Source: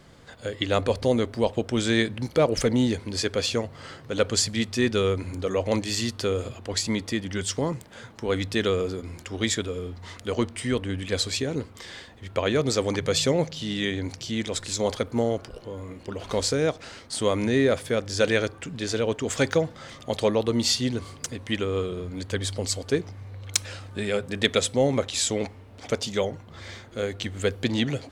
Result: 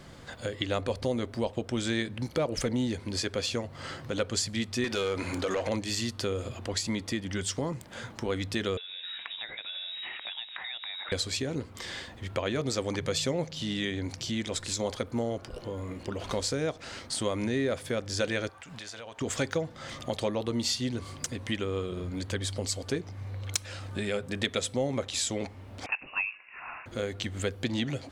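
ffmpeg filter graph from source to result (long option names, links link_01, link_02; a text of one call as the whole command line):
ffmpeg -i in.wav -filter_complex "[0:a]asettb=1/sr,asplit=3[link_01][link_02][link_03];[link_01]atrim=end=4.844[link_04];[link_02]atrim=start=4.84:end=5.69,asetpts=PTS-STARTPTS,afade=type=in:duration=0.004:curve=qsin,afade=type=out:start_time=0.846:duration=0.004:curve=qsin,acompressor=threshold=-26dB:ratio=2.5:attack=3.2:release=140:knee=1:detection=peak,asplit=2[link_05][link_06];[link_06]highpass=frequency=720:poles=1,volume=19dB,asoftclip=type=tanh:threshold=-14.5dB[link_07];[link_05][link_07]amix=inputs=2:normalize=0,lowpass=frequency=6500:poles=1,volume=-6dB[link_08];[link_03]atrim=start=5.686[link_09];[link_04][link_08]acrossfade=duration=0.004:curve1=hsin:curve2=qsin[link_10];[link_10][link_09]acrossfade=duration=0.004:curve1=qsin:curve2=hsin,asettb=1/sr,asplit=3[link_11][link_12][link_13];[link_11]atrim=end=8.774[link_14];[link_12]atrim=start=8.77:end=11.12,asetpts=PTS-STARTPTS,afade=type=in:duration=0.004:curve=qsin,afade=type=out:start_time=2.346:duration=0.004:curve=qsin,equalizer=frequency=1700:width_type=o:width=1.4:gain=9.5,acompressor=threshold=-37dB:ratio=8:attack=3.2:release=140:knee=1:detection=peak,lowpass=frequency=3300:width_type=q:width=0.5098,lowpass=frequency=3300:width_type=q:width=0.6013,lowpass=frequency=3300:width_type=q:width=0.9,lowpass=frequency=3300:width_type=q:width=2.563,afreqshift=-3900[link_15];[link_13]atrim=start=11.116[link_16];[link_14][link_15]acrossfade=duration=0.004:curve1=hsin:curve2=qsin[link_17];[link_17][link_16]acrossfade=duration=0.004:curve1=qsin:curve2=hsin,asettb=1/sr,asplit=3[link_18][link_19][link_20];[link_18]atrim=end=18.494[link_21];[link_19]atrim=start=18.49:end=19.21,asetpts=PTS-STARTPTS,afade=type=in:duration=0.004:curve=qsin,afade=type=out:start_time=0.716:duration=0.004:curve=qsin,lowshelf=frequency=520:width_type=q:width=1.5:gain=-10,acompressor=threshold=-42dB:ratio=6:attack=3.2:release=140:knee=1:detection=peak[link_22];[link_20]atrim=start=19.206[link_23];[link_21][link_22]acrossfade=duration=0.004:curve1=hsin:curve2=qsin[link_24];[link_24][link_23]acrossfade=duration=0.004:curve1=qsin:curve2=hsin,asettb=1/sr,asplit=3[link_25][link_26][link_27];[link_25]atrim=end=25.864[link_28];[link_26]atrim=start=25.86:end=26.86,asetpts=PTS-STARTPTS,afade=type=in:duration=0.004:curve=qsin,afade=type=out:start_time=0.996:duration=0.004:curve=qsin,highpass=frequency=370:width=0.5412,highpass=frequency=370:width=1.3066,lowpass=frequency=2600:width_type=q:width=0.5098,lowpass=frequency=2600:width_type=q:width=0.6013,lowpass=frequency=2600:width_type=q:width=0.9,lowpass=frequency=2600:width_type=q:width=2.563,afreqshift=-3100[link_29];[link_27]atrim=start=26.856[link_30];[link_28][link_29]acrossfade=duration=0.004:curve1=hsin:curve2=qsin[link_31];[link_31][link_30]acrossfade=duration=0.004:curve1=qsin:curve2=hsin,bandreject=frequency=440:width=12,acompressor=threshold=-37dB:ratio=2,volume=3dB" out.wav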